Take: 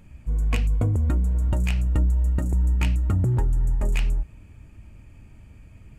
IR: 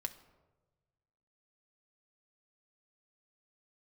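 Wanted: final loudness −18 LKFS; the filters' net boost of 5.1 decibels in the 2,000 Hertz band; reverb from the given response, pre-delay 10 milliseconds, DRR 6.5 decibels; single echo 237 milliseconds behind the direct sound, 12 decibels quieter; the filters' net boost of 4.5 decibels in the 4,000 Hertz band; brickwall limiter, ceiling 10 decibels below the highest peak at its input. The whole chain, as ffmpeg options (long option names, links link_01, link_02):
-filter_complex "[0:a]equalizer=frequency=2000:width_type=o:gain=5,equalizer=frequency=4000:width_type=o:gain=4,alimiter=limit=-21dB:level=0:latency=1,aecho=1:1:237:0.251,asplit=2[link_01][link_02];[1:a]atrim=start_sample=2205,adelay=10[link_03];[link_02][link_03]afir=irnorm=-1:irlink=0,volume=-5.5dB[link_04];[link_01][link_04]amix=inputs=2:normalize=0,volume=10.5dB"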